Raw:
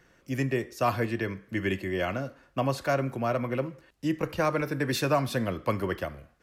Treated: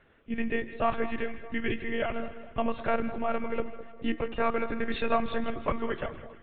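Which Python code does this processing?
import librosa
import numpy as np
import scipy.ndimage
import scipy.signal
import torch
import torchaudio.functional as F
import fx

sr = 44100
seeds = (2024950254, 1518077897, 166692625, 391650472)

y = fx.lpc_monotone(x, sr, seeds[0], pitch_hz=230.0, order=16)
y = fx.echo_split(y, sr, split_hz=1100.0, low_ms=206, high_ms=158, feedback_pct=52, wet_db=-13.5)
y = y * 10.0 ** (-1.0 / 20.0)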